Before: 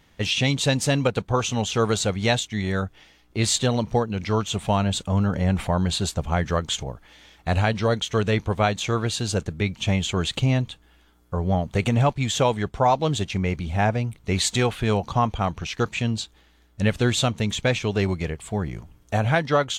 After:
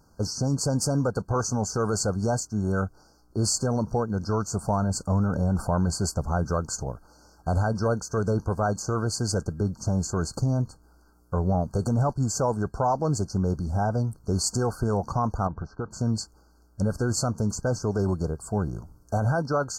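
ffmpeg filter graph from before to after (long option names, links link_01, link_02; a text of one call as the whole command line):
ffmpeg -i in.wav -filter_complex "[0:a]asettb=1/sr,asplit=3[link_01][link_02][link_03];[link_01]atrim=end=15.474[link_04];[link_02]atrim=start=15.47:end=15.91,asetpts=PTS-STARTPTS,afade=type=in:duration=0.004:curve=qsin,afade=type=out:start_time=0.436:duration=0.004:curve=qsin,lowpass=1600,acompressor=threshold=-26dB:ratio=6:attack=3.2:release=140:knee=1:detection=peak[link_05];[link_03]atrim=start=15.906[link_06];[link_04][link_05]acrossfade=duration=0.004:curve1=hsin:curve2=qsin[link_07];[link_07][link_06]acrossfade=duration=0.004:curve1=qsin:curve2=hsin,afftfilt=real='re*(1-between(b*sr/4096,1600,4300))':imag='im*(1-between(b*sr/4096,1600,4300))':win_size=4096:overlap=0.75,alimiter=limit=-15.5dB:level=0:latency=1:release=14" out.wav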